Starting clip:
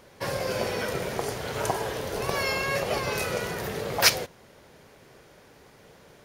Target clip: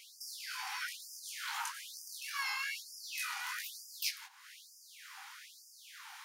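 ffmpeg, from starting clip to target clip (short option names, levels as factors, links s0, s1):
-af "acompressor=threshold=0.0112:ratio=12,flanger=delay=18:depth=6.5:speed=2.5,afftfilt=real='re*gte(b*sr/1024,730*pow(4800/730,0.5+0.5*sin(2*PI*1.1*pts/sr)))':imag='im*gte(b*sr/1024,730*pow(4800/730,0.5+0.5*sin(2*PI*1.1*pts/sr)))':win_size=1024:overlap=0.75,volume=3.35"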